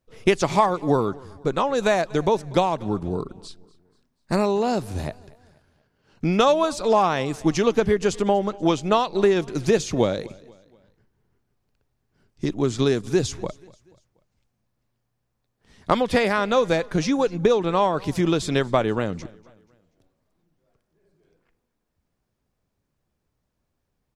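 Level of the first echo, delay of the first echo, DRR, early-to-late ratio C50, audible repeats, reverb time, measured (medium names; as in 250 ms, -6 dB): -23.0 dB, 241 ms, no reverb, no reverb, 2, no reverb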